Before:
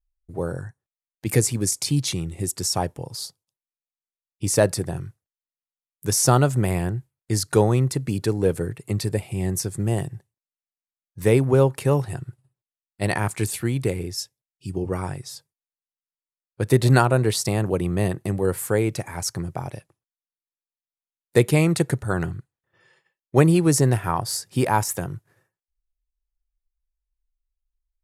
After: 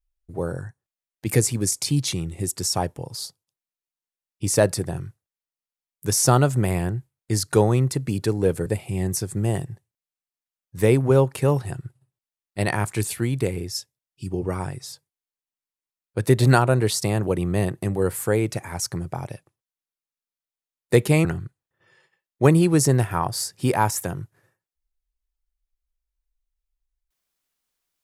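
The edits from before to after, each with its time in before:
0:08.66–0:09.09: remove
0:21.68–0:22.18: remove

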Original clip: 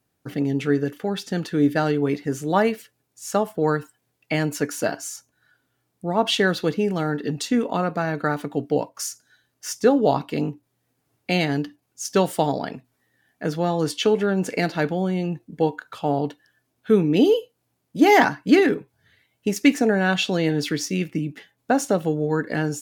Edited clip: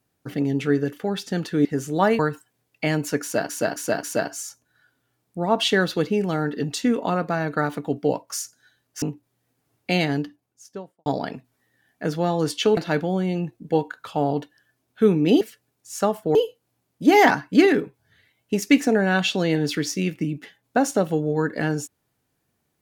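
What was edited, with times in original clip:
0:01.65–0:02.19: remove
0:02.73–0:03.67: move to 0:17.29
0:04.70–0:04.97: repeat, 4 plays
0:09.69–0:10.42: remove
0:11.40–0:12.46: fade out and dull
0:14.17–0:14.65: remove

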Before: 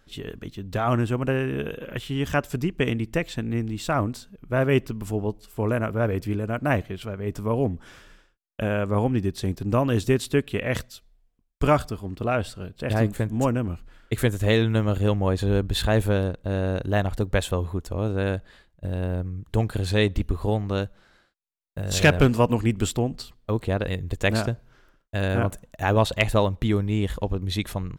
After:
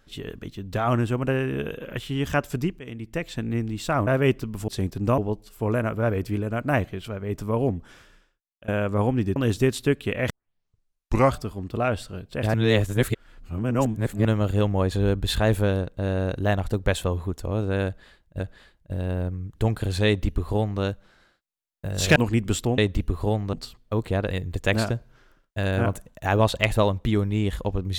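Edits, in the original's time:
0:02.79–0:03.44: fade in, from −20.5 dB
0:04.07–0:04.54: remove
0:07.64–0:08.65: fade out, to −20 dB
0:09.33–0:09.83: move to 0:05.15
0:10.77: tape start 1.06 s
0:13.01–0:14.72: reverse
0:18.33–0:18.87: repeat, 2 plays
0:19.99–0:20.74: duplicate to 0:23.10
0:22.09–0:22.48: remove

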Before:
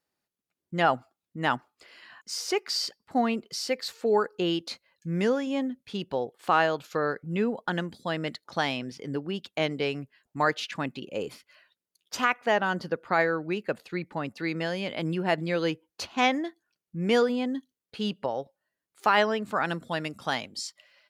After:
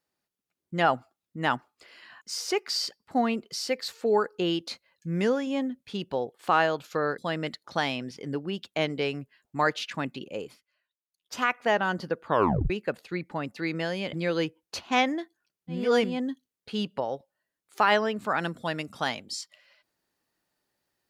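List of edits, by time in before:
0:07.18–0:07.99: remove
0:11.05–0:12.33: duck −19 dB, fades 0.43 s
0:13.06: tape stop 0.45 s
0:14.94–0:15.39: remove
0:17.05–0:17.34: reverse, crossfade 0.24 s

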